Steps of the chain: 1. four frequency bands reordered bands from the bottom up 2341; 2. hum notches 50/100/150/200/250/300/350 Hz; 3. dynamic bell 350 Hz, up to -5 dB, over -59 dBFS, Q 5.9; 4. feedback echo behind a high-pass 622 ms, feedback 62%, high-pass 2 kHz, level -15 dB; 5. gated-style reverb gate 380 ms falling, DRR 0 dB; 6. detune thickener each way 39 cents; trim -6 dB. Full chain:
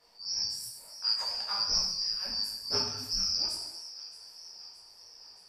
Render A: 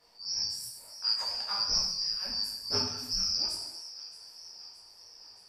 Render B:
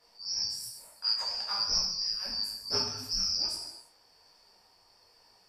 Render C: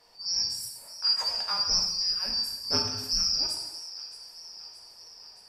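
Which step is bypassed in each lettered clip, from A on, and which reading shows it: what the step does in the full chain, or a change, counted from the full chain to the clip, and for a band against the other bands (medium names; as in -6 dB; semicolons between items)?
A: 2, 250 Hz band +2.5 dB; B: 4, momentary loudness spread change -10 LU; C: 6, 250 Hz band +2.0 dB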